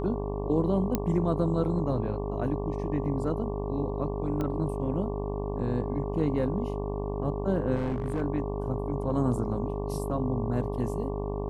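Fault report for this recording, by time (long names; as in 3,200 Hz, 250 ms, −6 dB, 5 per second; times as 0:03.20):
mains buzz 50 Hz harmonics 23 −33 dBFS
whistle 410 Hz −35 dBFS
0:00.95: click −12 dBFS
0:04.41: click −20 dBFS
0:07.75–0:08.22: clipping −25 dBFS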